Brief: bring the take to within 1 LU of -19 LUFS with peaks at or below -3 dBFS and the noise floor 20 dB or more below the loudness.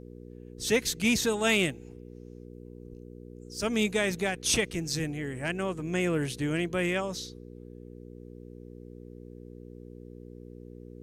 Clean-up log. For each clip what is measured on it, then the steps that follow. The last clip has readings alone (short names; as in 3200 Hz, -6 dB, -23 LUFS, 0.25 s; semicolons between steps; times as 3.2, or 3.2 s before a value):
hum 60 Hz; harmonics up to 480 Hz; hum level -43 dBFS; loudness -28.5 LUFS; peak -14.0 dBFS; loudness target -19.0 LUFS
-> de-hum 60 Hz, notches 8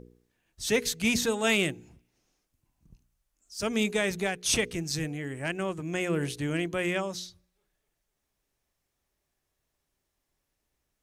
hum none; loudness -29.0 LUFS; peak -14.5 dBFS; loudness target -19.0 LUFS
-> gain +10 dB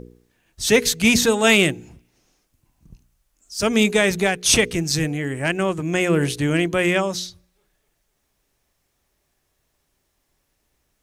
loudness -19.0 LUFS; peak -4.5 dBFS; noise floor -71 dBFS